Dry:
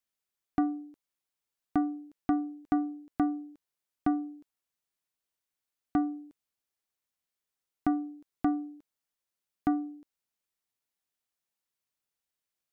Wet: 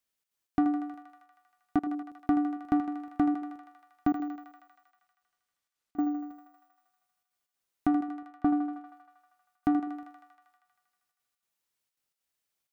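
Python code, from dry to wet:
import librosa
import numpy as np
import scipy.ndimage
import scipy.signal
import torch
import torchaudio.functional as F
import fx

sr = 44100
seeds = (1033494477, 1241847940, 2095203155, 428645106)

p1 = fx.resample_bad(x, sr, factor=2, down='filtered', up='hold', at=(4.07, 6.1))
p2 = fx.lowpass(p1, sr, hz=1600.0, slope=24, at=(8.03, 8.73))
p3 = 10.0 ** (-29.5 / 20.0) * np.tanh(p2 / 10.0 ** (-29.5 / 20.0))
p4 = p2 + (p3 * 10.0 ** (-8.0 / 20.0))
p5 = fx.step_gate(p4, sr, bpm=193, pattern='xxx.xx.xxx', floor_db=-24.0, edge_ms=4.5)
y = p5 + fx.echo_thinned(p5, sr, ms=79, feedback_pct=80, hz=470.0, wet_db=-7.0, dry=0)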